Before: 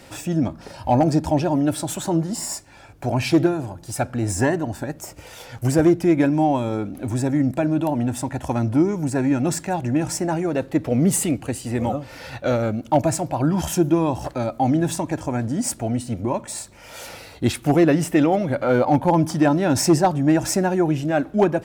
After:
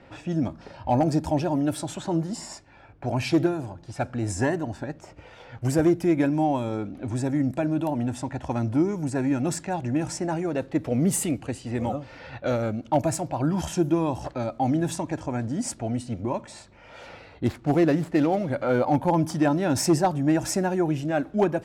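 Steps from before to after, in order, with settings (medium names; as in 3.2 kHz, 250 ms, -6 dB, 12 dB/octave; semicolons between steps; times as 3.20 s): 17.46–18.50 s: median filter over 15 samples; level-controlled noise filter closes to 2.2 kHz, open at -16.5 dBFS; trim -4.5 dB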